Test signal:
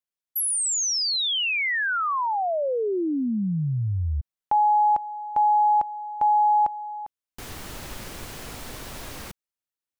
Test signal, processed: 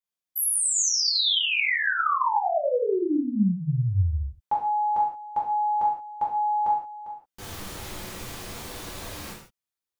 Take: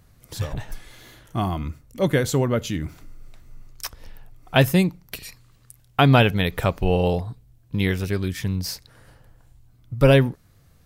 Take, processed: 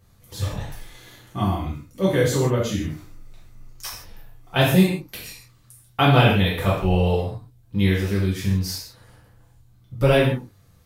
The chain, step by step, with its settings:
reverb whose tail is shaped and stops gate 200 ms falling, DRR −6 dB
level −6.5 dB

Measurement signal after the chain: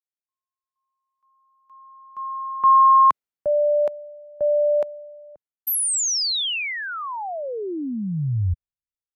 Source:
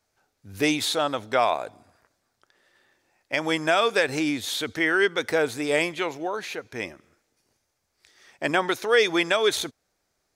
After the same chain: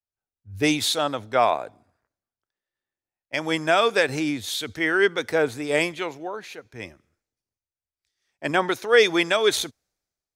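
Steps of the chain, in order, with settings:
low-shelf EQ 210 Hz +4.5 dB
multiband upward and downward expander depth 70%

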